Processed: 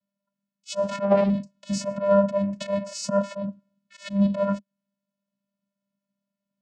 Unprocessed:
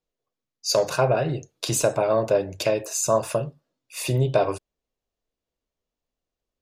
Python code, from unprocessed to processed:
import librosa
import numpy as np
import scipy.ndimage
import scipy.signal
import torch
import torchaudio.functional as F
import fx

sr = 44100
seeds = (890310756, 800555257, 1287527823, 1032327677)

y = fx.auto_swell(x, sr, attack_ms=113.0)
y = fx.vocoder(y, sr, bands=8, carrier='square', carrier_hz=199.0)
y = fx.doppler_dist(y, sr, depth_ms=0.17, at=(0.79, 1.3))
y = y * 10.0 ** (3.5 / 20.0)